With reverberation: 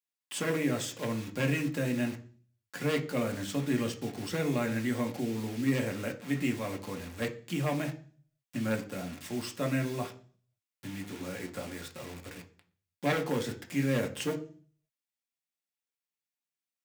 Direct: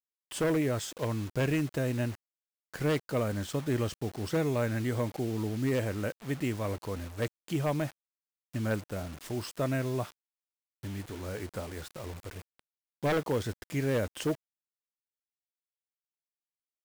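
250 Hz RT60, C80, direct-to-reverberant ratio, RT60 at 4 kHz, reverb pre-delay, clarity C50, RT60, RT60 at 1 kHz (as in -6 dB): 0.65 s, 19.0 dB, 2.5 dB, 0.50 s, 3 ms, 14.5 dB, 0.45 s, 0.40 s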